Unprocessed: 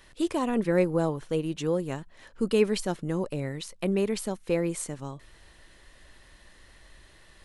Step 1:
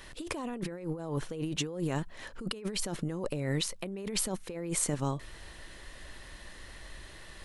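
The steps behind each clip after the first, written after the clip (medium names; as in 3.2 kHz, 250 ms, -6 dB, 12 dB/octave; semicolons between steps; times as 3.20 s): compressor with a negative ratio -35 dBFS, ratio -1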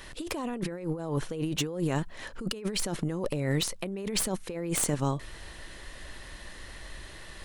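one-sided wavefolder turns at -27 dBFS; trim +3.5 dB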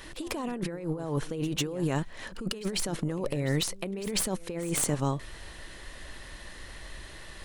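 pre-echo 147 ms -17.5 dB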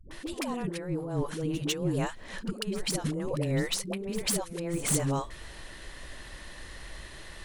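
phase dispersion highs, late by 111 ms, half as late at 370 Hz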